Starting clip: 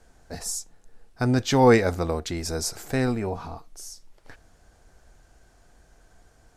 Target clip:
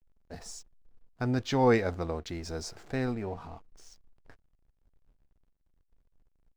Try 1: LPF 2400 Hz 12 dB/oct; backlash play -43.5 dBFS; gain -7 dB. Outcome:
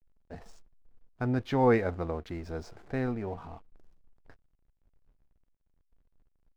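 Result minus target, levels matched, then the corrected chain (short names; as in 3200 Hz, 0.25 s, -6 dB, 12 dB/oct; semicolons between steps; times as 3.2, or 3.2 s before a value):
4000 Hz band -8.0 dB
LPF 5400 Hz 12 dB/oct; backlash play -43.5 dBFS; gain -7 dB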